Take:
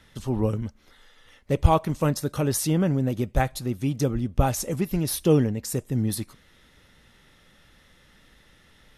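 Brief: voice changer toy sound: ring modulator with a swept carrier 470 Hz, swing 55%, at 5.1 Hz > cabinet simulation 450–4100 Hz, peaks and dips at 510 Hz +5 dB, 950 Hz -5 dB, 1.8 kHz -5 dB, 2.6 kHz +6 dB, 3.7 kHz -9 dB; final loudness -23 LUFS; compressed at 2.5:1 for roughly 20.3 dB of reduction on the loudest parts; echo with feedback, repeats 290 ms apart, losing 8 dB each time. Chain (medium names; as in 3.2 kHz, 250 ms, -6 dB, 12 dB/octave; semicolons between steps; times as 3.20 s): compression 2.5:1, threshold -43 dBFS; feedback delay 290 ms, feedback 40%, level -8 dB; ring modulator with a swept carrier 470 Hz, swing 55%, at 5.1 Hz; cabinet simulation 450–4100 Hz, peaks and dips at 510 Hz +5 dB, 950 Hz -5 dB, 1.8 kHz -5 dB, 2.6 kHz +6 dB, 3.7 kHz -9 dB; trim +22.5 dB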